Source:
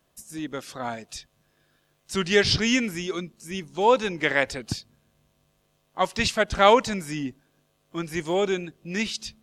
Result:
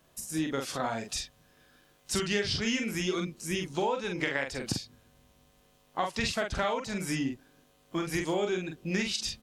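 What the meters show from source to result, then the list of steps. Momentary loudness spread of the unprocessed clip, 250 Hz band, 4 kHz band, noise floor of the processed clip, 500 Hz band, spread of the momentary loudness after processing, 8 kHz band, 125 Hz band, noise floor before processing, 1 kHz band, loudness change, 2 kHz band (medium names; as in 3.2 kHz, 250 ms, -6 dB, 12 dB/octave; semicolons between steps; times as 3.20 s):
16 LU, -3.5 dB, -5.5 dB, -65 dBFS, -8.5 dB, 7 LU, -1.5 dB, -3.0 dB, -69 dBFS, -9.5 dB, -7.0 dB, -7.0 dB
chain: compression 16:1, threshold -31 dBFS, peak gain reduction 21 dB; doubling 44 ms -4.5 dB; trim +3.5 dB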